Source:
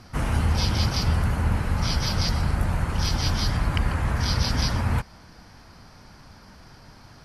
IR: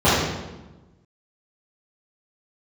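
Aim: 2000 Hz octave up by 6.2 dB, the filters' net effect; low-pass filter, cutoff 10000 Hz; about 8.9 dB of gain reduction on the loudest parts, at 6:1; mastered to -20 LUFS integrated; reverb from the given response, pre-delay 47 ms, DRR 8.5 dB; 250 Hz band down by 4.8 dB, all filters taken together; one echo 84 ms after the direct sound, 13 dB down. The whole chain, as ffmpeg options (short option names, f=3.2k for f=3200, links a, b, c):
-filter_complex "[0:a]lowpass=10k,equalizer=f=250:t=o:g=-7.5,equalizer=f=2k:t=o:g=8,acompressor=threshold=-28dB:ratio=6,aecho=1:1:84:0.224,asplit=2[a][b];[1:a]atrim=start_sample=2205,adelay=47[c];[b][c]afir=irnorm=-1:irlink=0,volume=-33dB[d];[a][d]amix=inputs=2:normalize=0,volume=10.5dB"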